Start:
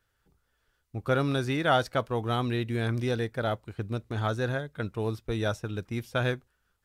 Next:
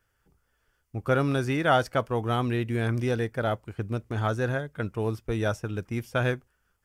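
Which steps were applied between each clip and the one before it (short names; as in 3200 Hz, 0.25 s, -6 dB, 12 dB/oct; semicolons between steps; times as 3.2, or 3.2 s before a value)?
bell 3900 Hz -10.5 dB 0.27 oct; gain +2 dB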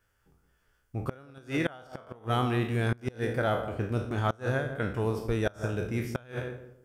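spectral trails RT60 0.54 s; darkening echo 0.166 s, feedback 29%, low-pass 820 Hz, level -8.5 dB; flipped gate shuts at -14 dBFS, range -26 dB; gain -1.5 dB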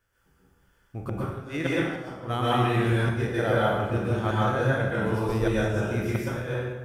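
plate-style reverb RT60 0.99 s, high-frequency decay 0.75×, pre-delay 0.11 s, DRR -6.5 dB; gain -2 dB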